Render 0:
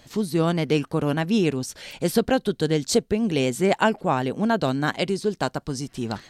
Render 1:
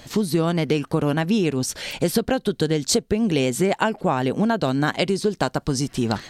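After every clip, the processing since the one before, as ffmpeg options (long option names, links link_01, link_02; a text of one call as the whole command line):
ffmpeg -i in.wav -af "acompressor=threshold=-25dB:ratio=6,volume=8dB" out.wav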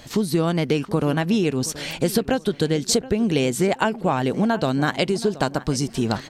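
ffmpeg -i in.wav -filter_complex "[0:a]asplit=2[link_01][link_02];[link_02]adelay=725,lowpass=frequency=2500:poles=1,volume=-17dB,asplit=2[link_03][link_04];[link_04]adelay=725,lowpass=frequency=2500:poles=1,volume=0.34,asplit=2[link_05][link_06];[link_06]adelay=725,lowpass=frequency=2500:poles=1,volume=0.34[link_07];[link_01][link_03][link_05][link_07]amix=inputs=4:normalize=0" out.wav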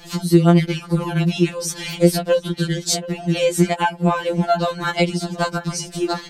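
ffmpeg -i in.wav -af "afftfilt=real='re*2.83*eq(mod(b,8),0)':imag='im*2.83*eq(mod(b,8),0)':win_size=2048:overlap=0.75,volume=4.5dB" out.wav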